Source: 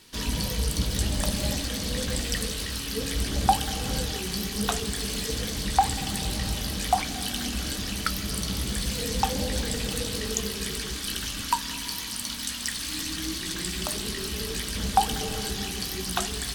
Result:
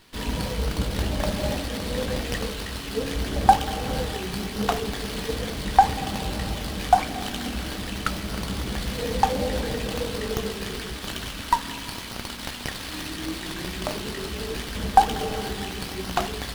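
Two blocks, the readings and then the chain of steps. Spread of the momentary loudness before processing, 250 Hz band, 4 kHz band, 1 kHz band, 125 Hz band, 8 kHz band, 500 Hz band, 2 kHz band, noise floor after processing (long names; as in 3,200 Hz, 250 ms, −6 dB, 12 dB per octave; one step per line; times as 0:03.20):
5 LU, +2.0 dB, −2.5 dB, +6.0 dB, +0.5 dB, −7.0 dB, +5.5 dB, +2.0 dB, −35 dBFS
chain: dynamic equaliser 620 Hz, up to +7 dB, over −41 dBFS, Q 0.73
windowed peak hold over 5 samples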